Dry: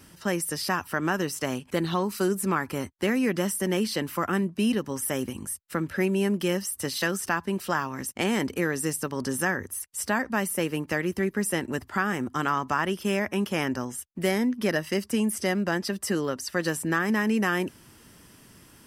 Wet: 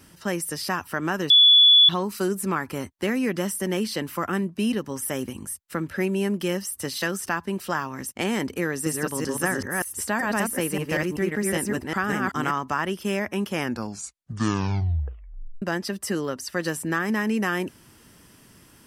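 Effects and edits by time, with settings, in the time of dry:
0:01.30–0:01.89: beep over 3,430 Hz −10.5 dBFS
0:08.67–0:12.51: delay that plays each chunk backwards 192 ms, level −1.5 dB
0:13.58: tape stop 2.04 s

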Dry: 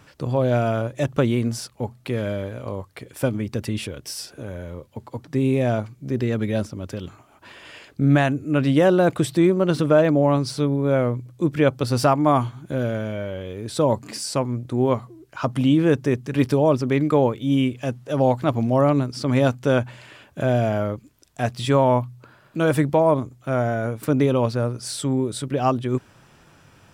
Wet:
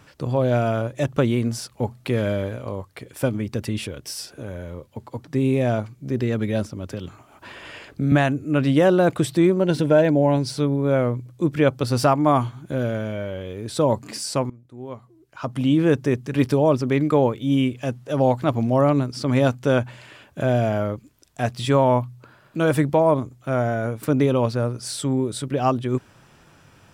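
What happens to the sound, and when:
0:01.70–0:02.56: clip gain +3 dB
0:06.90–0:08.12: multiband upward and downward compressor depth 40%
0:09.60–0:10.56: Butterworth band-reject 1,200 Hz, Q 3.9
0:14.50–0:15.81: fade in quadratic, from −20 dB

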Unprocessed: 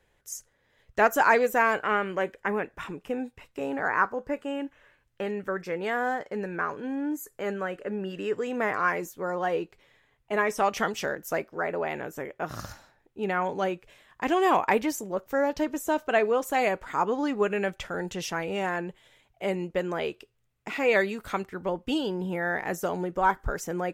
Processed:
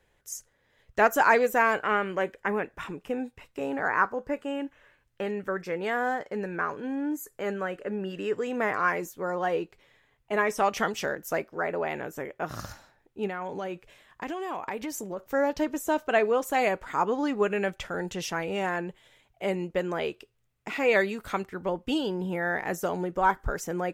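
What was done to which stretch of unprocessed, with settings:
0:13.27–0:15.20: downward compressor, threshold −30 dBFS

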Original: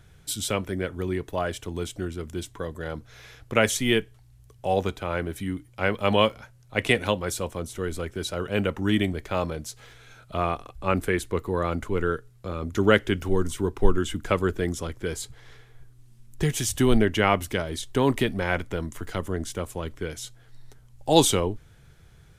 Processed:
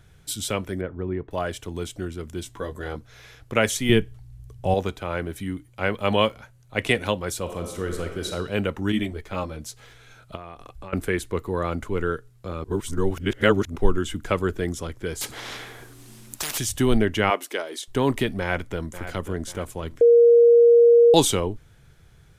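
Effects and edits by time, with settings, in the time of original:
0:00.81–0:01.31: Bessel low-pass filter 1,200 Hz
0:02.44–0:02.97: double-tracking delay 15 ms −3.5 dB
0:03.89–0:04.74: low-shelf EQ 250 Hz +12 dB
0:05.56–0:06.78: notch filter 5,300 Hz
0:07.41–0:08.31: thrown reverb, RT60 1.1 s, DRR 3.5 dB
0:08.92–0:09.61: string-ensemble chorus
0:10.35–0:10.93: downward compressor 16 to 1, threshold −34 dBFS
0:12.64–0:13.76: reverse
0:15.21–0:16.58: every bin compressed towards the loudest bin 10 to 1
0:17.30–0:17.88: high-pass filter 320 Hz 24 dB per octave
0:18.39–0:19.09: delay throw 540 ms, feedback 45%, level −12 dB
0:20.01–0:21.14: beep over 471 Hz −10 dBFS

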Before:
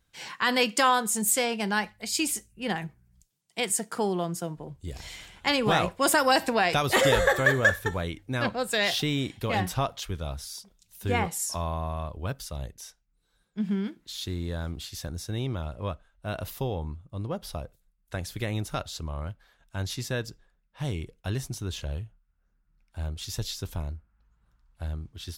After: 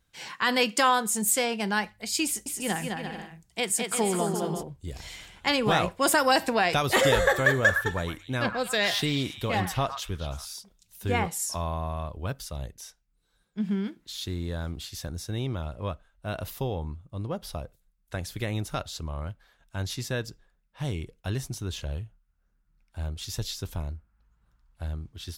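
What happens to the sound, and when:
0:02.25–0:04.63: bouncing-ball delay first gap 210 ms, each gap 0.65×, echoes 6
0:07.57–0:10.54: echo through a band-pass that steps 111 ms, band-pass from 1,300 Hz, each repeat 1.4 octaves, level −5 dB

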